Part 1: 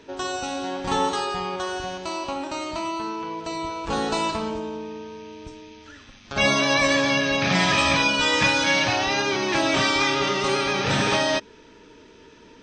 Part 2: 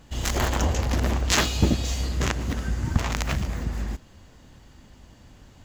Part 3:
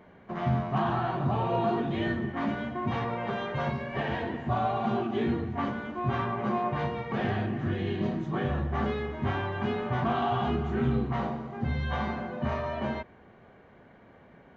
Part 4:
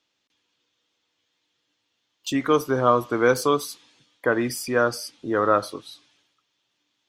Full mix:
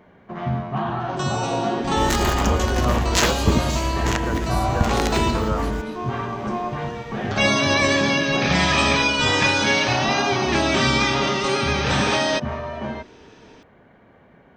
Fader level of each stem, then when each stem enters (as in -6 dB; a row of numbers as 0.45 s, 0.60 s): +1.0 dB, +2.0 dB, +2.5 dB, -9.5 dB; 1.00 s, 1.85 s, 0.00 s, 0.00 s